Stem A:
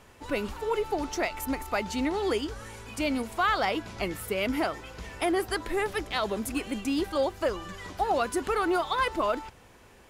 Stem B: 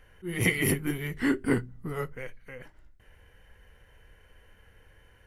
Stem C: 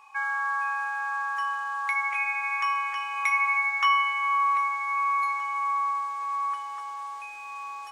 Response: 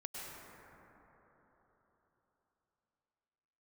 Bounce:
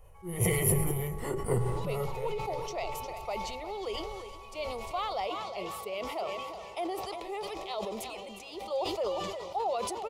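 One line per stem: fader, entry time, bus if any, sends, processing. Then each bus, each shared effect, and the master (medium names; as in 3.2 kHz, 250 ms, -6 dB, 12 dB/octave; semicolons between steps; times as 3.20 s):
-5.0 dB, 1.55 s, no send, echo send -11 dB, three-band isolator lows -19 dB, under 190 Hz, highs -12 dB, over 5.3 kHz
+2.0 dB, 0.00 s, send -12 dB, no echo send, high-order bell 3.5 kHz -10 dB
-18.5 dB, 0.00 s, no send, no echo send, peak limiter -24 dBFS, peak gain reduction 11 dB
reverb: on, RT60 4.1 s, pre-delay 93 ms
echo: feedback delay 357 ms, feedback 29%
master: static phaser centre 660 Hz, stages 4; decay stretcher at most 26 dB/s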